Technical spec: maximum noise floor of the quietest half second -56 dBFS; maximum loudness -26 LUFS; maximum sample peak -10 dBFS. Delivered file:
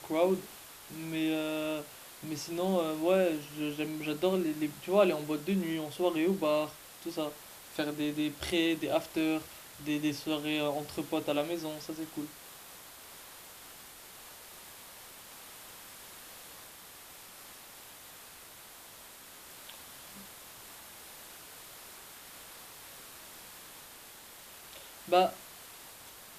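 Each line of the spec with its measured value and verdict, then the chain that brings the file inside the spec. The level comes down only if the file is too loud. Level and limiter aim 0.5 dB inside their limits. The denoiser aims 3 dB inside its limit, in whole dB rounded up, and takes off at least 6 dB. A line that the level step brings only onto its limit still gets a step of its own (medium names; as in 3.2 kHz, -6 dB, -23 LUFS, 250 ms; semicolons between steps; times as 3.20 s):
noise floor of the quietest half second -51 dBFS: fail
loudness -32.5 LUFS: pass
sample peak -13.0 dBFS: pass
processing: noise reduction 8 dB, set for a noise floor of -51 dBFS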